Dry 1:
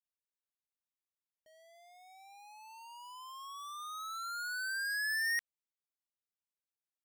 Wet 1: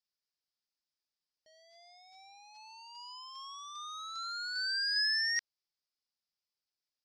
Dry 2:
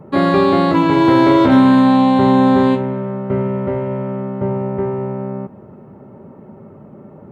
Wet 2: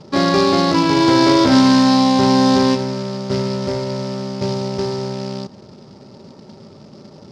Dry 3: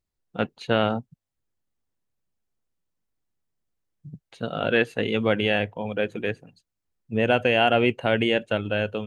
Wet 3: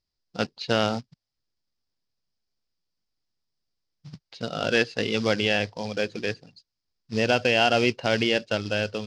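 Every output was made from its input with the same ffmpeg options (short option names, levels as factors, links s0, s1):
-af "acrusher=bits=4:mode=log:mix=0:aa=0.000001,lowpass=f=5000:t=q:w=6,volume=0.794"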